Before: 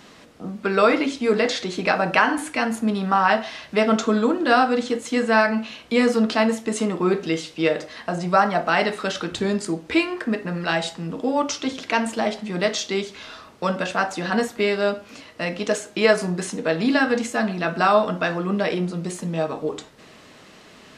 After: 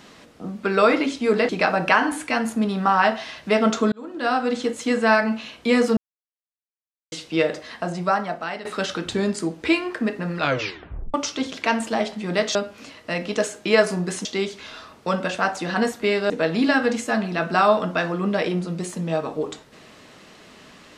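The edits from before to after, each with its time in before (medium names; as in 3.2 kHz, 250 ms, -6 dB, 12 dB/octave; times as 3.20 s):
1.49–1.75 s: delete
4.18–4.88 s: fade in
6.23–7.38 s: mute
7.99–8.91 s: fade out, to -15.5 dB
10.63 s: tape stop 0.77 s
14.86–16.56 s: move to 12.81 s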